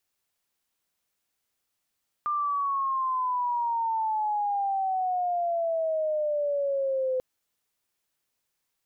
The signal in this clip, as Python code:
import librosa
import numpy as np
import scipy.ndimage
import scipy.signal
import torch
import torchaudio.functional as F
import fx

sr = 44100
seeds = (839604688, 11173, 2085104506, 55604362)

y = fx.chirp(sr, length_s=4.94, from_hz=1200.0, to_hz=510.0, law='logarithmic', from_db=-24.5, to_db=-24.0)